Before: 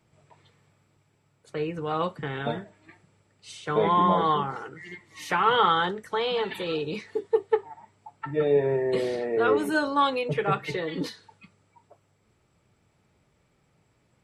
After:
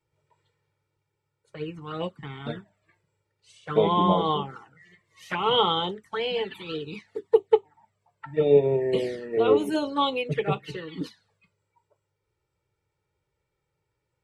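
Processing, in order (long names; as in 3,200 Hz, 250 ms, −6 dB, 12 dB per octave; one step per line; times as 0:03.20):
dynamic equaliser 3,000 Hz, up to +4 dB, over −49 dBFS, Q 4.5
flanger swept by the level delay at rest 2.2 ms, full sweep at −21 dBFS
expander for the loud parts 1.5 to 1, over −47 dBFS
level +5.5 dB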